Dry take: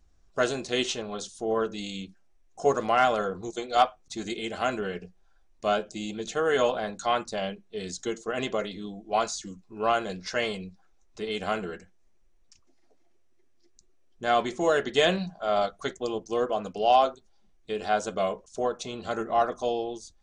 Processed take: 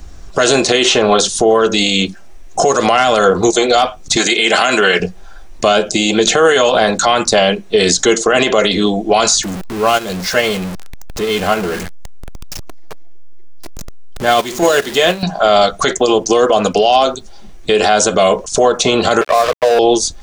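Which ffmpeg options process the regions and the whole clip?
ffmpeg -i in.wav -filter_complex "[0:a]asettb=1/sr,asplit=3[link_01][link_02][link_03];[link_01]atrim=end=4.164[link_04];[link_02]atrim=start=4.16:end=5,asetpts=PTS-STARTPTS,afade=type=in:duration=0.004:curve=qsin,afade=type=out:start_time=0.836:duration=0.004:curve=qsin,highpass=170,tiltshelf=frequency=760:gain=-6.5[link_05];[link_03]atrim=start=4.996[link_06];[link_04][link_05]acrossfade=duration=0.004:curve1=hsin:curve2=qsin[link_07];[link_07][link_06]acrossfade=duration=0.004:curve1=qsin:curve2=hsin,asettb=1/sr,asplit=3[link_08][link_09][link_10];[link_08]atrim=end=9.434[link_11];[link_09]atrim=start=9.43:end=15.23,asetpts=PTS-STARTPTS,afade=type=in:duration=0.004:curve=qsin,afade=type=out:start_time=5.796:duration=0.004:curve=qsin,aeval=exprs='val(0)+0.5*0.0266*sgn(val(0))':channel_layout=same,agate=range=-17dB:threshold=-23dB:ratio=16:release=100:detection=peak[link_12];[link_10]atrim=start=15.226[link_13];[link_11][link_12]acrossfade=duration=0.004:curve1=hsin:curve2=qsin[link_14];[link_14][link_13]acrossfade=duration=0.004:curve1=qsin:curve2=hsin,asettb=1/sr,asplit=3[link_15][link_16][link_17];[link_15]atrim=end=19.214[link_18];[link_16]atrim=start=19.21:end=19.79,asetpts=PTS-STARTPTS,afade=type=in:duration=0.004:curve=qsin,afade=type=out:start_time=0.576:duration=0.004:curve=qsin,asuperpass=centerf=860:order=8:qfactor=0.64,aecho=1:1:1.8:0.77,atrim=end_sample=25578,aeval=exprs='sgn(val(0))*max(abs(val(0))-0.0168,0)':channel_layout=same[link_19];[link_17]atrim=start=19.786[link_20];[link_18][link_19]acrossfade=duration=0.004:curve1=hsin:curve2=qsin[link_21];[link_21][link_20]acrossfade=duration=0.004:curve1=qsin:curve2=hsin,acrossover=split=350|2900[link_22][link_23][link_24];[link_22]acompressor=threshold=-49dB:ratio=4[link_25];[link_23]acompressor=threshold=-34dB:ratio=4[link_26];[link_24]acompressor=threshold=-41dB:ratio=4[link_27];[link_25][link_26][link_27]amix=inputs=3:normalize=0,alimiter=level_in=30.5dB:limit=-1dB:release=50:level=0:latency=1,volume=-1dB" out.wav

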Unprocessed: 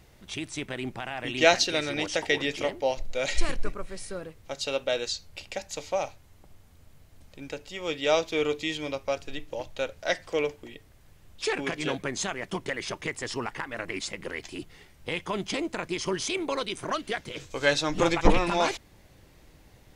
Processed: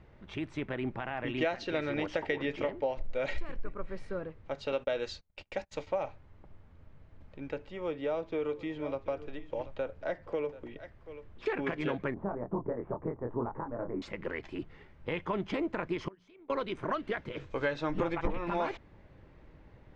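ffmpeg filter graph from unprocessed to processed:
ffmpeg -i in.wav -filter_complex "[0:a]asettb=1/sr,asplit=3[link_01][link_02][link_03];[link_01]atrim=end=4.724[link_04];[link_02]atrim=start=4.72:end=5.87,asetpts=PTS-STARTPTS,afade=type=in:duration=0.004:curve=qsin,afade=type=out:start_time=1.146:duration=0.004:curve=qsin,agate=range=-30dB:threshold=-43dB:ratio=16:release=100:detection=peak,highshelf=frequency=4000:gain=7.5[link_05];[link_03]atrim=start=5.866[link_06];[link_04][link_05]acrossfade=duration=0.004:curve1=hsin:curve2=qsin[link_07];[link_07][link_06]acrossfade=duration=0.004:curve1=qsin:curve2=hsin,asettb=1/sr,asplit=3[link_08][link_09][link_10];[link_08]atrim=end=7.664[link_11];[link_09]atrim=start=7.66:end=11.46,asetpts=PTS-STARTPTS,afade=type=in:duration=0.004:curve=qsin,afade=type=out:start_time=3.796:duration=0.004:curve=qsin,aecho=1:1:734:0.106,atrim=end_sample=167580,acrossover=split=400|1400|4300[link_12][link_13][link_14][link_15];[link_12]acompressor=threshold=-39dB:ratio=3[link_16];[link_13]acompressor=threshold=-33dB:ratio=3[link_17];[link_14]acompressor=threshold=-48dB:ratio=3[link_18];[link_15]acompressor=threshold=-53dB:ratio=3[link_19];[link_16][link_17][link_18][link_19]amix=inputs=4:normalize=0[link_20];[link_10]atrim=start=11.456[link_21];[link_11][link_20]acrossfade=duration=0.004:curve1=hsin:curve2=qsin[link_22];[link_22][link_21]acrossfade=duration=0.004:curve1=qsin:curve2=hsin,asettb=1/sr,asplit=3[link_23][link_24][link_25];[link_23]atrim=end=12.144[link_26];[link_24]atrim=start=12.14:end=14.02,asetpts=PTS-STARTPTS,afade=type=in:duration=0.004:curve=qsin,afade=type=out:start_time=1.876:duration=0.004:curve=qsin,lowpass=frequency=1000:width=0.5412,lowpass=frequency=1000:width=1.3066,asplit=2[link_27][link_28];[link_28]adelay=25,volume=-4.5dB[link_29];[link_27][link_29]amix=inputs=2:normalize=0,atrim=end_sample=82908[link_30];[link_25]atrim=start=14.016[link_31];[link_26][link_30]acrossfade=duration=0.004:curve1=hsin:curve2=qsin[link_32];[link_32][link_31]acrossfade=duration=0.004:curve1=qsin:curve2=hsin,asettb=1/sr,asplit=3[link_33][link_34][link_35];[link_33]atrim=end=16.084[link_36];[link_34]atrim=start=16.08:end=16.5,asetpts=PTS-STARTPTS,afade=type=in:duration=0.004:curve=qsin,afade=type=out:start_time=0.416:duration=0.004:curve=qsin,agate=range=-24dB:threshold=-25dB:ratio=16:release=100:detection=peak,bandreject=frequency=60:width_type=h:width=6,bandreject=frequency=120:width_type=h:width=6,bandreject=frequency=180:width_type=h:width=6,acompressor=threshold=-50dB:ratio=16:attack=3.2:release=140:knee=1:detection=peak[link_37];[link_35]atrim=start=16.496[link_38];[link_36][link_37]acrossfade=duration=0.004:curve1=hsin:curve2=qsin[link_39];[link_39][link_38]acrossfade=duration=0.004:curve1=qsin:curve2=hsin,lowpass=1800,bandreject=frequency=730:width=13,acompressor=threshold=-27dB:ratio=10" out.wav

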